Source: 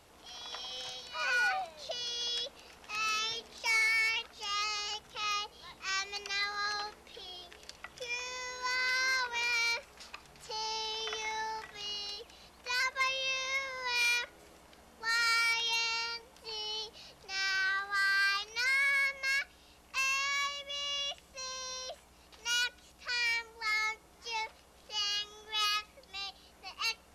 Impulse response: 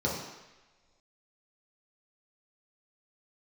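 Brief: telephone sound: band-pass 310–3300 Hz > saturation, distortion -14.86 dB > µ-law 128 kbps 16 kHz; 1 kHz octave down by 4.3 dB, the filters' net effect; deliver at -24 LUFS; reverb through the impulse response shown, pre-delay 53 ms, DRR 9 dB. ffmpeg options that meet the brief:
-filter_complex "[0:a]equalizer=f=1000:t=o:g=-5.5,asplit=2[s0][s1];[1:a]atrim=start_sample=2205,adelay=53[s2];[s1][s2]afir=irnorm=-1:irlink=0,volume=0.119[s3];[s0][s3]amix=inputs=2:normalize=0,highpass=310,lowpass=3300,asoftclip=threshold=0.0316,volume=4.47" -ar 16000 -c:a pcm_mulaw

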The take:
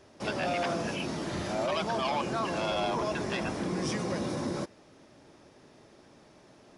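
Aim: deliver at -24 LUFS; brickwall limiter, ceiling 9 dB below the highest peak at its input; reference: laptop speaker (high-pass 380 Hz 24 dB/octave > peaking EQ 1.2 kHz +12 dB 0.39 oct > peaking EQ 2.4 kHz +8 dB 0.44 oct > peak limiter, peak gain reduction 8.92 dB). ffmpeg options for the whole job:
-af "alimiter=level_in=1.88:limit=0.0631:level=0:latency=1,volume=0.531,highpass=f=380:w=0.5412,highpass=f=380:w=1.3066,equalizer=f=1200:t=o:w=0.39:g=12,equalizer=f=2400:t=o:w=0.44:g=8,volume=5.96,alimiter=limit=0.168:level=0:latency=1"

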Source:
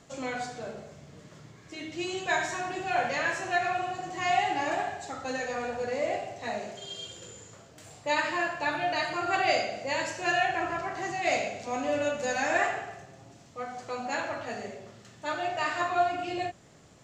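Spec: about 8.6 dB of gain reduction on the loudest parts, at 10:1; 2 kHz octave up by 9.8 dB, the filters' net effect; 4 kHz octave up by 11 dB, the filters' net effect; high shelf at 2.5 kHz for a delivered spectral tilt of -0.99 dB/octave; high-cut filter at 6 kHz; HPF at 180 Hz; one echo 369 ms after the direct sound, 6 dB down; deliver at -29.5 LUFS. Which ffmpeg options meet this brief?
-af "highpass=180,lowpass=6000,equalizer=f=2000:t=o:g=7,highshelf=f=2500:g=8.5,equalizer=f=4000:t=o:g=5,acompressor=threshold=0.0708:ratio=10,aecho=1:1:369:0.501,volume=0.75"

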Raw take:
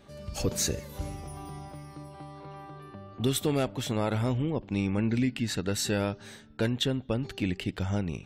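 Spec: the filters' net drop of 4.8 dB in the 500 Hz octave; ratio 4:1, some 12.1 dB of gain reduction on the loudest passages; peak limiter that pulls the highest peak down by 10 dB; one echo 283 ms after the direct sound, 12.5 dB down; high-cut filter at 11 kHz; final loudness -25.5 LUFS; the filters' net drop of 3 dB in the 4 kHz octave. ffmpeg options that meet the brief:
-af "lowpass=11000,equalizer=f=500:t=o:g=-6,equalizer=f=4000:t=o:g=-3.5,acompressor=threshold=0.0112:ratio=4,alimiter=level_in=3.35:limit=0.0631:level=0:latency=1,volume=0.299,aecho=1:1:283:0.237,volume=9.44"

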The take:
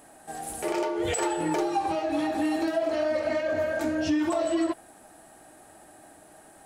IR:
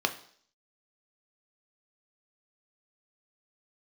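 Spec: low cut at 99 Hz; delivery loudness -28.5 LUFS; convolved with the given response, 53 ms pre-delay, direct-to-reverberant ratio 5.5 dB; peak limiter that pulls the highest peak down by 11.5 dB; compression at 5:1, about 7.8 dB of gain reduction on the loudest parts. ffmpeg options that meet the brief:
-filter_complex "[0:a]highpass=99,acompressor=threshold=0.0282:ratio=5,alimiter=level_in=2.82:limit=0.0631:level=0:latency=1,volume=0.355,asplit=2[s0][s1];[1:a]atrim=start_sample=2205,adelay=53[s2];[s1][s2]afir=irnorm=-1:irlink=0,volume=0.178[s3];[s0][s3]amix=inputs=2:normalize=0,volume=3.35"

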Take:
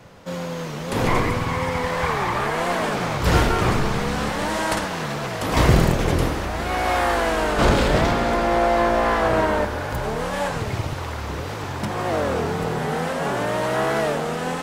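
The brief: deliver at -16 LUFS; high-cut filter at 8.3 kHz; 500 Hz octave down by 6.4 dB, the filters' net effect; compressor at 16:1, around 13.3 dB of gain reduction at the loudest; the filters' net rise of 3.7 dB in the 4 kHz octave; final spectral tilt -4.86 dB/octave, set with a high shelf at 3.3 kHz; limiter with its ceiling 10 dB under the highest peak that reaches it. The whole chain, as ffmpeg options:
-af "lowpass=8300,equalizer=f=500:t=o:g=-8.5,highshelf=f=3300:g=-5,equalizer=f=4000:t=o:g=8.5,acompressor=threshold=0.0562:ratio=16,volume=7.94,alimiter=limit=0.422:level=0:latency=1"

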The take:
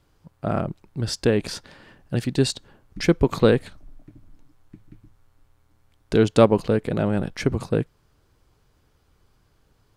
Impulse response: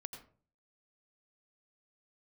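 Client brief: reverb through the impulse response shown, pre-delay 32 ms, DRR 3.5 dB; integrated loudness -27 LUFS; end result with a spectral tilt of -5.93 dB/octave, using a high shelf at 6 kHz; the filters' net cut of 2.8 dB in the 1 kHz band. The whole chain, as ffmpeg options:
-filter_complex "[0:a]equalizer=f=1000:t=o:g=-4,highshelf=f=6000:g=5,asplit=2[s0][s1];[1:a]atrim=start_sample=2205,adelay=32[s2];[s1][s2]afir=irnorm=-1:irlink=0,volume=1[s3];[s0][s3]amix=inputs=2:normalize=0,volume=0.531"

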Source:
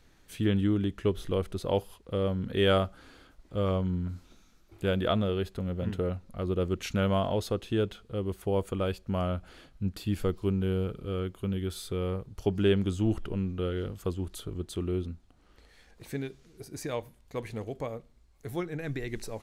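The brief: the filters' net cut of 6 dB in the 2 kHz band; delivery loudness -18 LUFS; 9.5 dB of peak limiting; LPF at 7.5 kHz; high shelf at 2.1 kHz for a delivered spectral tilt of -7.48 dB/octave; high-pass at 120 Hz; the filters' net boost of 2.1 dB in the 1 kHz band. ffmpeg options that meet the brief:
-af "highpass=120,lowpass=7500,equalizer=f=1000:t=o:g=6.5,equalizer=f=2000:t=o:g=-8.5,highshelf=f=2100:g=-5,volume=7.08,alimiter=limit=0.562:level=0:latency=1"

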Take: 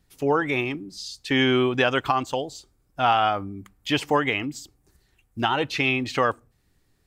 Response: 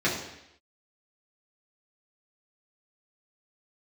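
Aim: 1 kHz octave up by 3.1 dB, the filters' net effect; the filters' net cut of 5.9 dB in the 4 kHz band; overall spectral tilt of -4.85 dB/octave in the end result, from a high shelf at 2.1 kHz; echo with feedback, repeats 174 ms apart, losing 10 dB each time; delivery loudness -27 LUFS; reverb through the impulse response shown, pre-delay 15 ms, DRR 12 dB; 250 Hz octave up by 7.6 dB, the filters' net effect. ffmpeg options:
-filter_complex "[0:a]equalizer=f=250:t=o:g=8.5,equalizer=f=1000:t=o:g=5,highshelf=f=2100:g=-5.5,equalizer=f=4000:t=o:g=-3.5,aecho=1:1:174|348|522|696:0.316|0.101|0.0324|0.0104,asplit=2[s0][s1];[1:a]atrim=start_sample=2205,adelay=15[s2];[s1][s2]afir=irnorm=-1:irlink=0,volume=0.0531[s3];[s0][s3]amix=inputs=2:normalize=0,volume=0.447"

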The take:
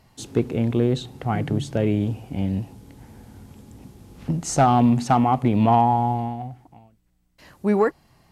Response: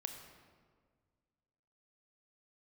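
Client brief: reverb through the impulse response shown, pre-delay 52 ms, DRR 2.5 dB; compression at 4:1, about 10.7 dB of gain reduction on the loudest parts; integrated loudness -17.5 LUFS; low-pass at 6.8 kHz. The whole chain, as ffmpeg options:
-filter_complex "[0:a]lowpass=6800,acompressor=threshold=0.0501:ratio=4,asplit=2[s0][s1];[1:a]atrim=start_sample=2205,adelay=52[s2];[s1][s2]afir=irnorm=-1:irlink=0,volume=0.944[s3];[s0][s3]amix=inputs=2:normalize=0,volume=3.76"

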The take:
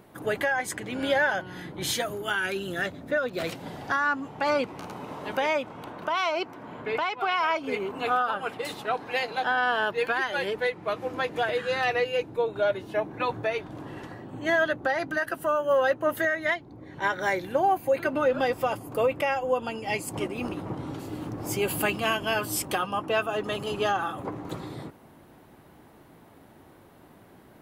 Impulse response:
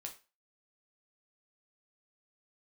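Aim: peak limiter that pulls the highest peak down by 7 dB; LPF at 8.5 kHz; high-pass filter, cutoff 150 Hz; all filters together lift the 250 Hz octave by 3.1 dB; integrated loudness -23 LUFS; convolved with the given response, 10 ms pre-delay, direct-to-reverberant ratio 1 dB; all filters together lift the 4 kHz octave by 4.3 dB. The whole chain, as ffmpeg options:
-filter_complex "[0:a]highpass=150,lowpass=8500,equalizer=f=250:t=o:g=4.5,equalizer=f=4000:t=o:g=6,alimiter=limit=0.126:level=0:latency=1,asplit=2[s0][s1];[1:a]atrim=start_sample=2205,adelay=10[s2];[s1][s2]afir=irnorm=-1:irlink=0,volume=1.33[s3];[s0][s3]amix=inputs=2:normalize=0,volume=1.5"

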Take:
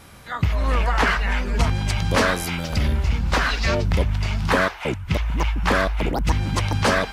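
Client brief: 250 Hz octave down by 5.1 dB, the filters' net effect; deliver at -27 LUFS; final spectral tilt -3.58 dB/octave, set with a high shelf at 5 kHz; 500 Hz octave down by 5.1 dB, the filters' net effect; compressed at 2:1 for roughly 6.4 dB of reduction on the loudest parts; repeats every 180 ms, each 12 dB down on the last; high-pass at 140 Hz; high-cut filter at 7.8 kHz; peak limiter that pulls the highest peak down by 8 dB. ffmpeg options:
-af "highpass=140,lowpass=7800,equalizer=f=250:t=o:g=-4.5,equalizer=f=500:t=o:g=-5.5,highshelf=f=5000:g=8,acompressor=threshold=0.0398:ratio=2,alimiter=limit=0.1:level=0:latency=1,aecho=1:1:180|360|540:0.251|0.0628|0.0157,volume=1.5"

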